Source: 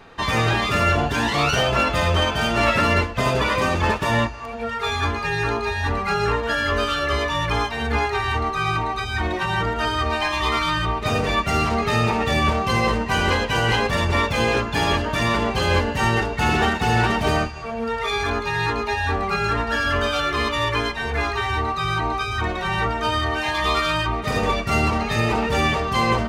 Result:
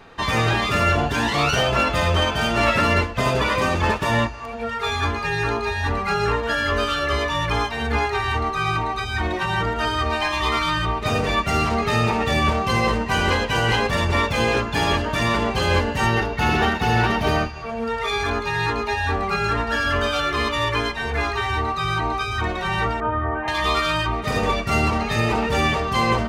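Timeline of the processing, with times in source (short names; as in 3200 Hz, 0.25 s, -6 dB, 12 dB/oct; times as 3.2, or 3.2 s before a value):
16.06–17.69 bell 8000 Hz -10 dB 0.37 oct
23–23.48 LPF 1600 Hz 24 dB/oct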